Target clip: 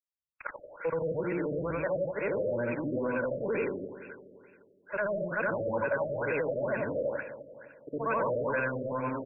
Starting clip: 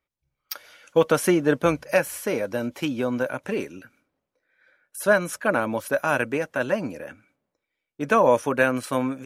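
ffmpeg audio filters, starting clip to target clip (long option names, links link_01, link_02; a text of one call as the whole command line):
ffmpeg -i in.wav -filter_complex "[0:a]afftfilt=real='re':imag='-im':win_size=8192:overlap=0.75,agate=range=-36dB:threshold=-53dB:ratio=16:detection=peak,aecho=1:1:2:0.36,acrossover=split=170[link_01][link_02];[link_02]acompressor=threshold=-38dB:ratio=8[link_03];[link_01][link_03]amix=inputs=2:normalize=0,acrossover=split=3200[link_04][link_05];[link_04]alimiter=level_in=11.5dB:limit=-24dB:level=0:latency=1:release=17,volume=-11.5dB[link_06];[link_06][link_05]amix=inputs=2:normalize=0,acontrast=46,asplit=2[link_07][link_08];[link_08]highpass=frequency=720:poles=1,volume=16dB,asoftclip=type=tanh:threshold=-19dB[link_09];[link_07][link_09]amix=inputs=2:normalize=0,lowpass=frequency=7100:poles=1,volume=-6dB,asplit=2[link_10][link_11];[link_11]aecho=0:1:257|514|771|1028|1285:0.224|0.11|0.0538|0.0263|0.0129[link_12];[link_10][link_12]amix=inputs=2:normalize=0,afftfilt=real='re*lt(b*sr/1024,640*pow(2800/640,0.5+0.5*sin(2*PI*2.2*pts/sr)))':imag='im*lt(b*sr/1024,640*pow(2800/640,0.5+0.5*sin(2*PI*2.2*pts/sr)))':win_size=1024:overlap=0.75,volume=2dB" out.wav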